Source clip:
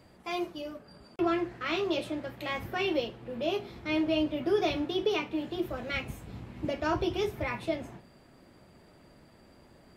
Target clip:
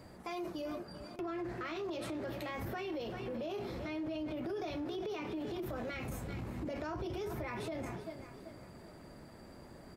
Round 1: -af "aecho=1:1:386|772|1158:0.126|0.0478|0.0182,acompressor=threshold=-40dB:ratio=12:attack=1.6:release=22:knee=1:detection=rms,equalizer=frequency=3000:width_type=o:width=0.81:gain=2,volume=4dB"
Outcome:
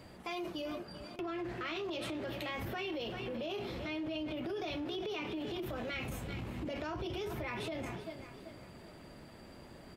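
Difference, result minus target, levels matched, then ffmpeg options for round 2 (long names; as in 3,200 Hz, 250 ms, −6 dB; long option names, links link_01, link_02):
4,000 Hz band +5.5 dB
-af "aecho=1:1:386|772|1158:0.126|0.0478|0.0182,acompressor=threshold=-40dB:ratio=12:attack=1.6:release=22:knee=1:detection=rms,equalizer=frequency=3000:width_type=o:width=0.81:gain=-6.5,volume=4dB"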